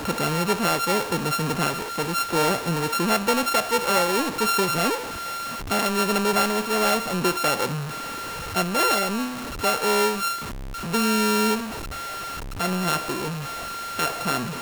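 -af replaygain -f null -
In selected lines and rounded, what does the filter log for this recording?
track_gain = +4.3 dB
track_peak = 0.210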